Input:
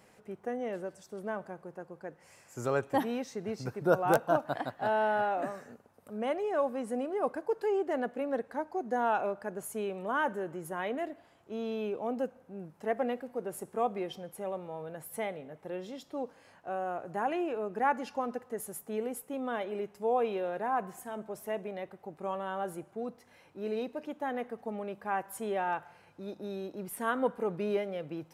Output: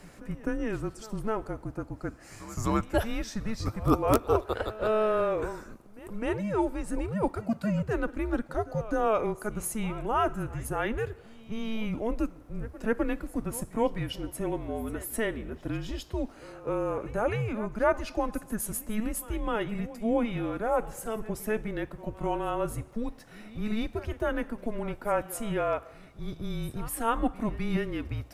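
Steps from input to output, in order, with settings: dynamic EQ 410 Hz, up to -5 dB, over -40 dBFS, Q 0.73; in parallel at +2 dB: vocal rider within 3 dB 0.5 s; on the sum: pre-echo 0.256 s -17.5 dB; frequency shift -220 Hz

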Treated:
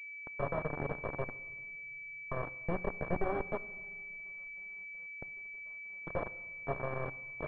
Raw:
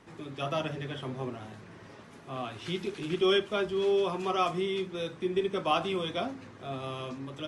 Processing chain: minimum comb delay 1.8 ms; expander -38 dBFS; spectral gate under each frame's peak -25 dB strong; low shelf 72 Hz +7.5 dB; compressor 5:1, threshold -37 dBFS, peak gain reduction 13.5 dB; bit-crush 6-bit; 3.57–6.07 flipped gate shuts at -45 dBFS, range -36 dB; shoebox room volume 2400 m³, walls mixed, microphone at 0.31 m; pulse-width modulation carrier 2300 Hz; gain +5.5 dB

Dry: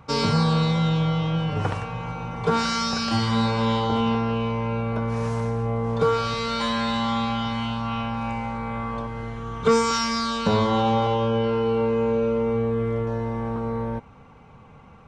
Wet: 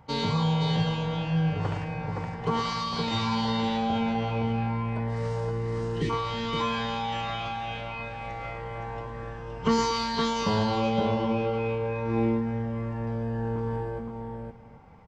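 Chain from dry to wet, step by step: spectral delete 5.51–6.1, 570–1800 Hz; tapped delay 0.111/0.517/0.781 s -10/-4/-18.5 dB; formant shift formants -3 st; gain -5.5 dB

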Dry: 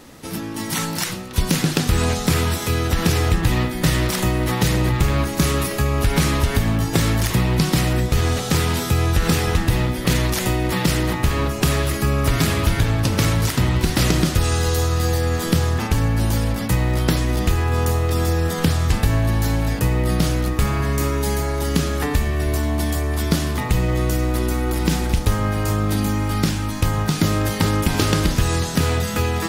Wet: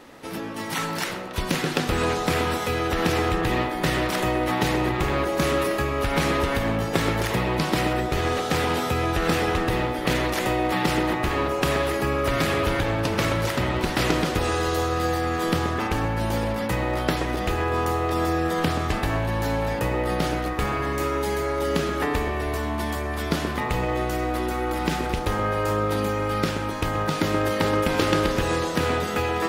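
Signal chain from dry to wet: tone controls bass -10 dB, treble -10 dB; narrowing echo 0.128 s, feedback 69%, band-pass 520 Hz, level -4 dB

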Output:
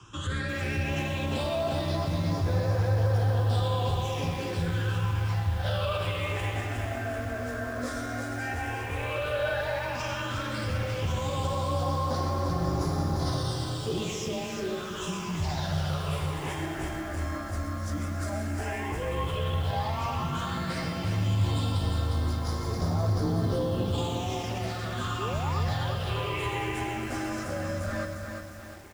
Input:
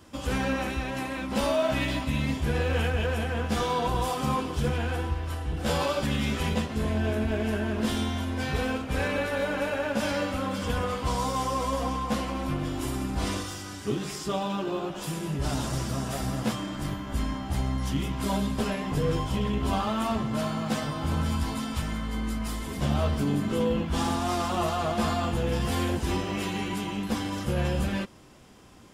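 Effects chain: LPF 6900 Hz 12 dB/oct; bell 220 Hz -13 dB 0.67 oct; limiter -25.5 dBFS, peak gain reduction 10 dB; soft clip -27.5 dBFS, distortion -20 dB; phaser stages 8, 0.099 Hz, lowest notch 110–2800 Hz; painted sound rise, 25.18–25.6, 330–1300 Hz -42 dBFS; frequency shift +24 Hz; feedback echo 0.124 s, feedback 59%, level -11 dB; lo-fi delay 0.353 s, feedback 55%, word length 9-bit, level -5.5 dB; gain +5.5 dB

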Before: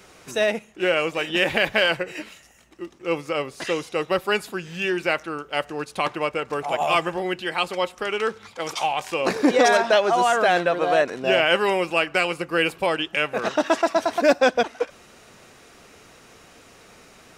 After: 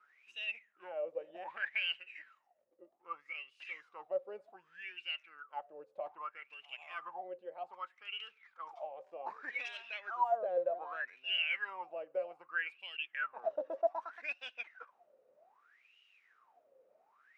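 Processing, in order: wah 0.64 Hz 520–2900 Hz, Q 20; gain -2 dB

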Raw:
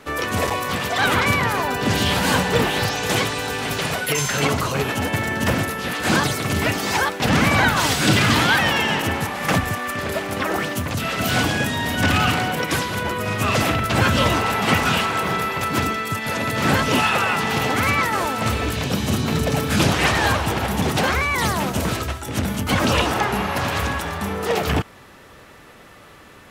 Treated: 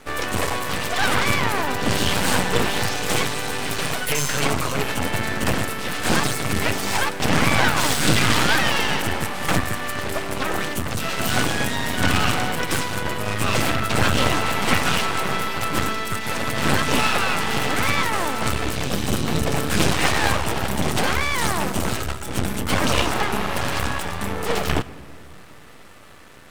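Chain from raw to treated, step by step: bell 8500 Hz +6.5 dB 0.22 oct; half-wave rectifier; on a send: reverb RT60 2.2 s, pre-delay 77 ms, DRR 18 dB; on the sum: gain +2.5 dB

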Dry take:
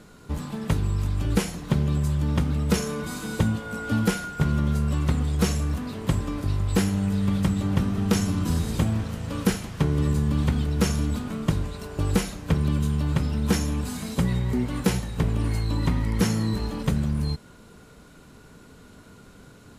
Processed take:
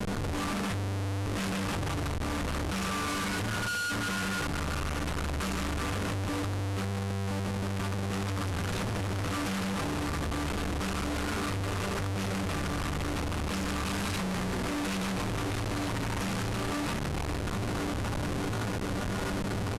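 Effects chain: octaver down 2 oct, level -5 dB; bell 1300 Hz +8.5 dB 0.96 oct; feedback echo 0.152 s, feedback 23%, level -8 dB; limiter -15.5 dBFS, peak gain reduction 9.5 dB; bell 2600 Hz +9 dB 0.24 oct; metallic resonator 96 Hz, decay 0.26 s, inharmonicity 0.002; diffused feedback echo 1.022 s, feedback 57%, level -14.5 dB; compressor 5:1, threshold -36 dBFS, peak gain reduction 13 dB; notches 60/120/180/240/300 Hz; Schmitt trigger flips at -52 dBFS; LPF 12000 Hz 24 dB/oct; gain +8.5 dB

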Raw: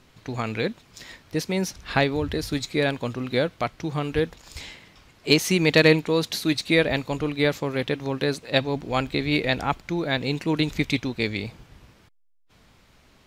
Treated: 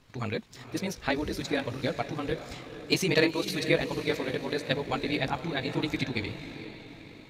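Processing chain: diffused feedback echo 0.863 s, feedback 49%, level -11 dB; chorus 0.82 Hz, delay 15.5 ms, depth 3.1 ms; granular stretch 0.55×, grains 41 ms; gain -1.5 dB

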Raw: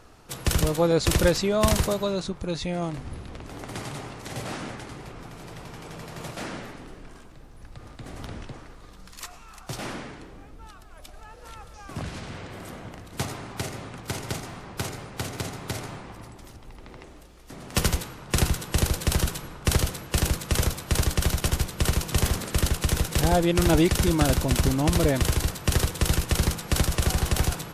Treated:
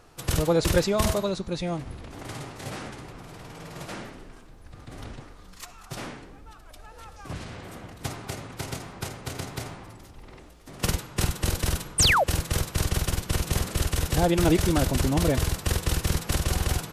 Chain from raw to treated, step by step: time stretch by phase-locked vocoder 0.61×; de-hum 216 Hz, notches 36; painted sound fall, 11.98–12.24, 480–10000 Hz -20 dBFS

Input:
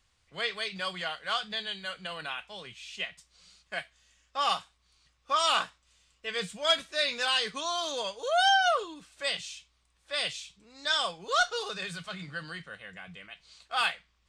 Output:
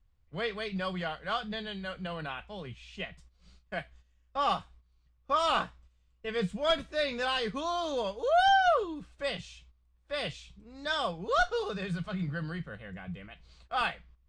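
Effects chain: gate -58 dBFS, range -11 dB; tilt -4 dB/oct

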